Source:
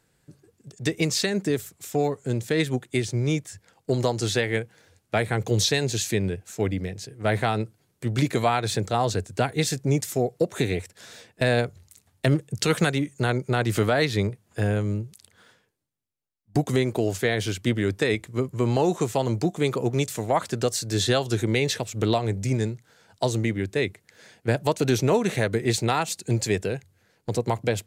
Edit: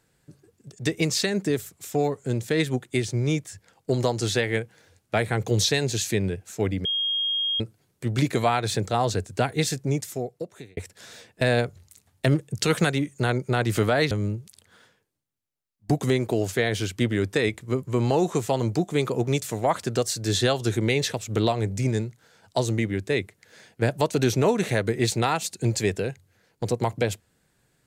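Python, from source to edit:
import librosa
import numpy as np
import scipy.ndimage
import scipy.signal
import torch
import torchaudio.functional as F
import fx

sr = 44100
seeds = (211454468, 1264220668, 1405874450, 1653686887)

y = fx.edit(x, sr, fx.bleep(start_s=6.85, length_s=0.75, hz=3250.0, db=-22.5),
    fx.fade_out_span(start_s=9.62, length_s=1.15),
    fx.cut(start_s=14.11, length_s=0.66), tone=tone)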